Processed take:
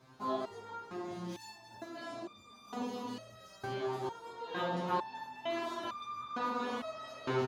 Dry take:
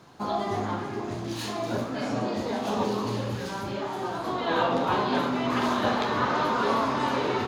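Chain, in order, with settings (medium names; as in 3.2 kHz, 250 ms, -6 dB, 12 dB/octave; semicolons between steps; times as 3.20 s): on a send: delay 529 ms -17.5 dB; on the sum: resonator arpeggio 2.2 Hz 130–1200 Hz; trim +2.5 dB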